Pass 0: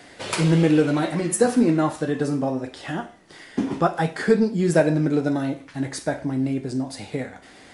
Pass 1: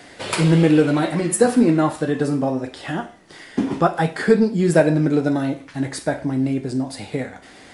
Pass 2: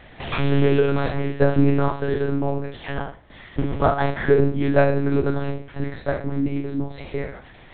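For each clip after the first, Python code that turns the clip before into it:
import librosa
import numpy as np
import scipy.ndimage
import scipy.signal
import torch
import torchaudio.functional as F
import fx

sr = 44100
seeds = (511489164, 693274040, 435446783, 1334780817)

y1 = fx.dynamic_eq(x, sr, hz=6100.0, q=3.8, threshold_db=-54.0, ratio=4.0, max_db=-5)
y1 = y1 * 10.0 ** (3.0 / 20.0)
y2 = fx.spec_trails(y1, sr, decay_s=0.43)
y2 = fx.room_flutter(y2, sr, wall_m=7.1, rt60_s=0.23)
y2 = fx.lpc_monotone(y2, sr, seeds[0], pitch_hz=140.0, order=8)
y2 = y2 * 10.0 ** (-3.0 / 20.0)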